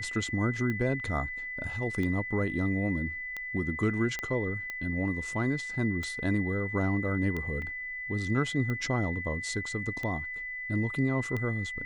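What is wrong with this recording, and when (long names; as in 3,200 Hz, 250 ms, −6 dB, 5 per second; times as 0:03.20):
scratch tick 45 rpm −22 dBFS
whistle 2,000 Hz −35 dBFS
0:04.19: click −18 dBFS
0:07.62: drop-out 2.5 ms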